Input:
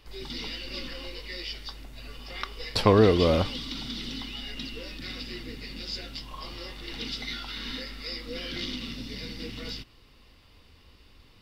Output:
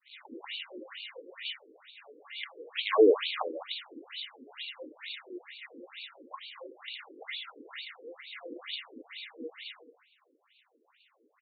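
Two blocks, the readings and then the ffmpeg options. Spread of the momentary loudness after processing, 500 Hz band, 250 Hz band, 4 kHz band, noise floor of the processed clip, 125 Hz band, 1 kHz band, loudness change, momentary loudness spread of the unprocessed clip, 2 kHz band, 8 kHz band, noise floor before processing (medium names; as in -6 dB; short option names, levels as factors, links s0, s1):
16 LU, -2.5 dB, -8.5 dB, -5.5 dB, -71 dBFS, under -40 dB, -6.0 dB, -4.5 dB, 16 LU, -3.0 dB, under -30 dB, -56 dBFS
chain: -af "agate=range=0.0224:threshold=0.00282:ratio=3:detection=peak,aresample=11025,acrusher=bits=3:mode=log:mix=0:aa=0.000001,aresample=44100,aecho=1:1:208:0.251,afftfilt=real='re*between(b*sr/1024,360*pow(3200/360,0.5+0.5*sin(2*PI*2.2*pts/sr))/1.41,360*pow(3200/360,0.5+0.5*sin(2*PI*2.2*pts/sr))*1.41)':imag='im*between(b*sr/1024,360*pow(3200/360,0.5+0.5*sin(2*PI*2.2*pts/sr))/1.41,360*pow(3200/360,0.5+0.5*sin(2*PI*2.2*pts/sr))*1.41)':win_size=1024:overlap=0.75,volume=1.19"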